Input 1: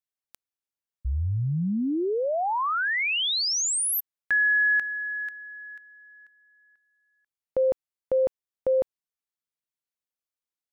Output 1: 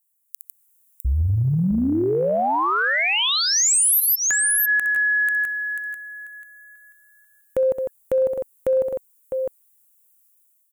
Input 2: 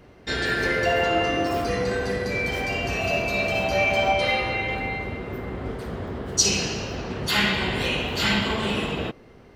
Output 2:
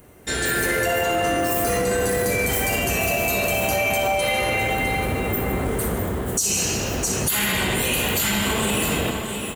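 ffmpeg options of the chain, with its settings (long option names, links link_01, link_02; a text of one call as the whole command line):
ffmpeg -i in.wav -af "dynaudnorm=framelen=190:gausssize=5:maxgain=10dB,aecho=1:1:63|152|655:0.224|0.237|0.251,aexciter=amount=13.7:drive=3.5:freq=7200,acompressor=threshold=-16dB:ratio=10:attack=0.81:release=58:knee=6:detection=rms" out.wav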